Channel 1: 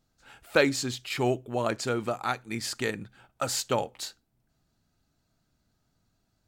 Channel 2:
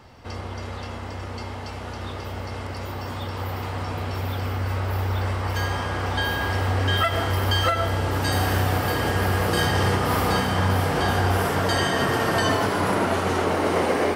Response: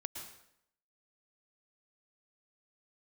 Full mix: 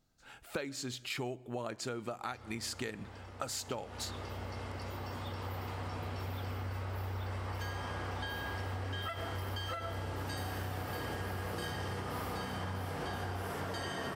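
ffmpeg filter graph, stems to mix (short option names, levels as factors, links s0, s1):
-filter_complex "[0:a]volume=0.75,asplit=2[s0][s1];[s1]volume=0.106[s2];[1:a]adelay=2050,volume=0.335,afade=t=in:st=3.44:d=0.44:silence=0.446684[s3];[2:a]atrim=start_sample=2205[s4];[s2][s4]afir=irnorm=-1:irlink=0[s5];[s0][s3][s5]amix=inputs=3:normalize=0,acompressor=threshold=0.0178:ratio=12"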